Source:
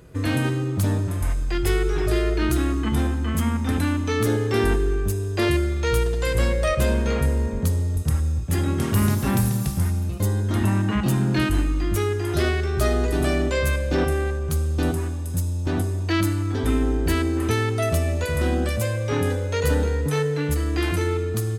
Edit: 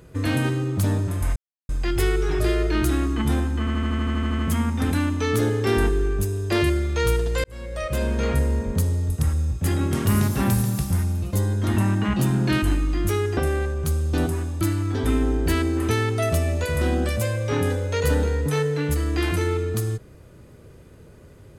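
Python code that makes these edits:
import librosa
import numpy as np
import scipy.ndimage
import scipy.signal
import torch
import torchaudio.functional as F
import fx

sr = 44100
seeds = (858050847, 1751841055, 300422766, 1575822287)

y = fx.edit(x, sr, fx.insert_silence(at_s=1.36, length_s=0.33),
    fx.stutter(start_s=3.26, slice_s=0.08, count=11),
    fx.fade_in_span(start_s=6.31, length_s=0.85),
    fx.cut(start_s=12.24, length_s=1.78),
    fx.cut(start_s=15.26, length_s=0.95), tone=tone)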